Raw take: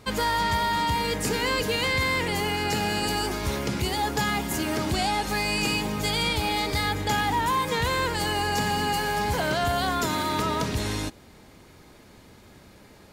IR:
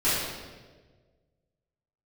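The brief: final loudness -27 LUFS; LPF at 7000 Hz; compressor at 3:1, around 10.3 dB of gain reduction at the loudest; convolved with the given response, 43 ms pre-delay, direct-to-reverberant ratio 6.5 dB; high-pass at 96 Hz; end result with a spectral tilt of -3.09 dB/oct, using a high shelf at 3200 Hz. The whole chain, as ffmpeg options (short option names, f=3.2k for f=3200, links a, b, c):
-filter_complex "[0:a]highpass=96,lowpass=7k,highshelf=f=3.2k:g=-4.5,acompressor=threshold=-37dB:ratio=3,asplit=2[a][b];[1:a]atrim=start_sample=2205,adelay=43[c];[b][c]afir=irnorm=-1:irlink=0,volume=-20.5dB[d];[a][d]amix=inputs=2:normalize=0,volume=8dB"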